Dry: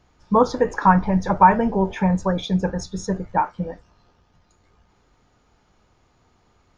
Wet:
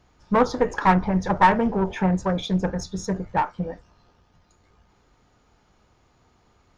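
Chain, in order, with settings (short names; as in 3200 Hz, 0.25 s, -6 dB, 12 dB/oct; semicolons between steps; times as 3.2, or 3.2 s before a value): one diode to ground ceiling -17 dBFS; Doppler distortion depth 0.18 ms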